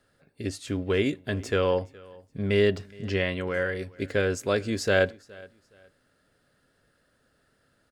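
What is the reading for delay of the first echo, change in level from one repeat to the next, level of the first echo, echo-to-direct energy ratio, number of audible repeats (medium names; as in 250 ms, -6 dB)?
418 ms, -11.5 dB, -23.5 dB, -23.0 dB, 2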